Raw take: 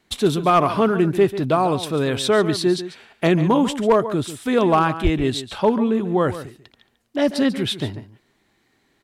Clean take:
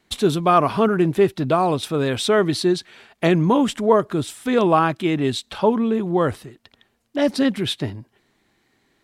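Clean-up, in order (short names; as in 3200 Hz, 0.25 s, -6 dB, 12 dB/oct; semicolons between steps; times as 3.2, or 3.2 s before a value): clip repair -8 dBFS; 5.03–5.15 HPF 140 Hz 24 dB/oct; inverse comb 0.142 s -13 dB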